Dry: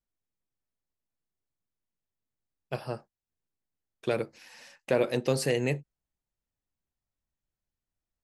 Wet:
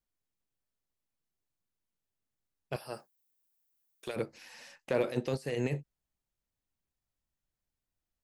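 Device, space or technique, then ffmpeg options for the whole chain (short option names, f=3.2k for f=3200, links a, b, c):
de-esser from a sidechain: -filter_complex "[0:a]asettb=1/sr,asplit=3[a][b][c];[a]atrim=end=2.764[d];[b]atrim=start=2.76:end=4.16,asetpts=PTS-STARTPTS,afade=t=in:d=0.004:c=qsin,afade=t=out:st=1.396:d=0.004:c=qsin,aemphasis=mode=production:type=bsi[e];[c]atrim=start=4.156[f];[d][e]acrossfade=d=0.004:c1=hsin:c2=qsin[g];[g][f]acrossfade=d=0.004:c1=qsin:c2=hsin,asplit=2[h][i];[i]highpass=6.1k,apad=whole_len=363209[j];[h][j]sidechaincompress=threshold=-55dB:ratio=8:attack=3.8:release=28"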